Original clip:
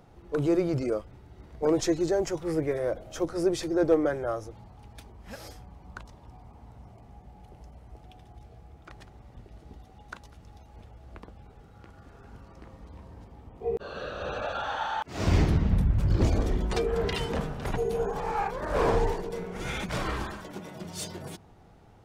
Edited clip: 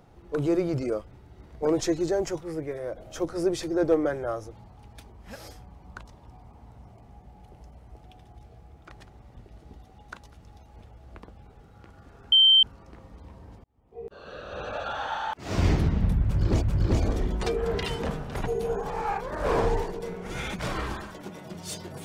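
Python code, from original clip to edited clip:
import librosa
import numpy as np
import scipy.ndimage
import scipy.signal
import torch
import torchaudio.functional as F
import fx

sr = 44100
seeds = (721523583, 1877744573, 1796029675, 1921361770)

y = fx.edit(x, sr, fx.clip_gain(start_s=2.41, length_s=0.57, db=-5.0),
    fx.insert_tone(at_s=12.32, length_s=0.31, hz=3120.0, db=-13.5),
    fx.fade_in_span(start_s=13.33, length_s=1.22),
    fx.repeat(start_s=15.92, length_s=0.39, count=2), tone=tone)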